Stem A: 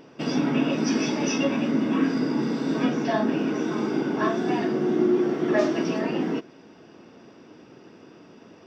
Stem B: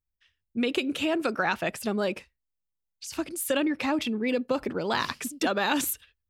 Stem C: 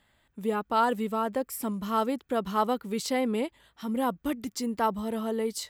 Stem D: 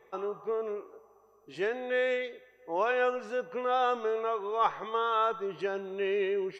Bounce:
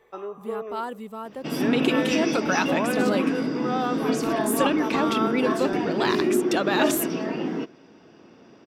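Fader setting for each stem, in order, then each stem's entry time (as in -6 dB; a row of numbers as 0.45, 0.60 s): -2.0, +1.5, -7.0, 0.0 dB; 1.25, 1.10, 0.00, 0.00 s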